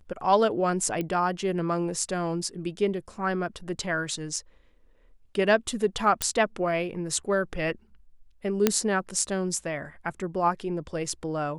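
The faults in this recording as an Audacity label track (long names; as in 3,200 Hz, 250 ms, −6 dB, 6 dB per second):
1.010000	1.010000	click −18 dBFS
6.220000	6.220000	click −6 dBFS
8.670000	8.670000	click −5 dBFS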